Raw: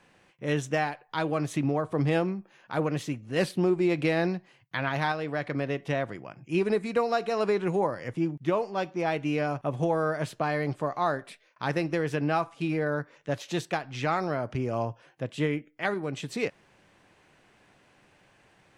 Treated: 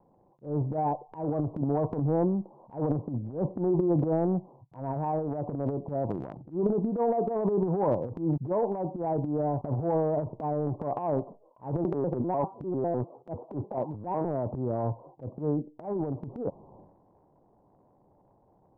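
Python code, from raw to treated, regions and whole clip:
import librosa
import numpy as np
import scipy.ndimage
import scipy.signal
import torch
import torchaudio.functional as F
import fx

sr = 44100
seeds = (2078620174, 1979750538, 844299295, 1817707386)

y = fx.chain(x, sr, fx.highpass(hz=160.0, slope=12),
    fx.vibrato_shape(shape='square', rate_hz=5.0, depth_cents=250.0), at=(11.84, 14.25))
y = scipy.signal.sosfilt(scipy.signal.butter(12, 1000.0, 'lowpass', fs=sr, output='sos'), y)
y = fx.transient(y, sr, attack_db=-12, sustain_db=11)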